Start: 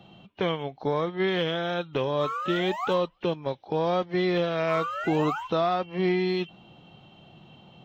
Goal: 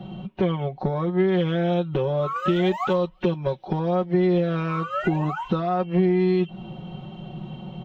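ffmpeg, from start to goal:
-af "asetnsamples=n=441:p=0,asendcmd='2.36 highshelf g -3.5;3.79 highshelf g -10',highshelf=f=2.2k:g=-11,acompressor=threshold=-34dB:ratio=6,lowshelf=f=200:g=9,asoftclip=type=tanh:threshold=-22dB,aecho=1:1:5.4:0.88,volume=8.5dB"

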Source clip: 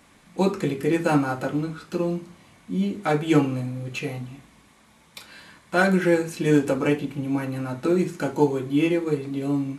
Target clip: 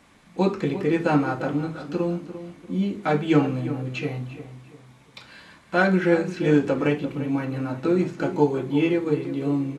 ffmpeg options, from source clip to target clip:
-filter_complex "[0:a]acrossover=split=6300[a][b];[b]acompressor=threshold=-59dB:ratio=4:attack=1:release=60[c];[a][c]amix=inputs=2:normalize=0,highshelf=f=9.5k:g=-9.5,asplit=2[d][e];[e]adelay=345,lowpass=f=2k:p=1,volume=-12dB,asplit=2[f][g];[g]adelay=345,lowpass=f=2k:p=1,volume=0.38,asplit=2[h][i];[i]adelay=345,lowpass=f=2k:p=1,volume=0.38,asplit=2[j][k];[k]adelay=345,lowpass=f=2k:p=1,volume=0.38[l];[f][h][j][l]amix=inputs=4:normalize=0[m];[d][m]amix=inputs=2:normalize=0"

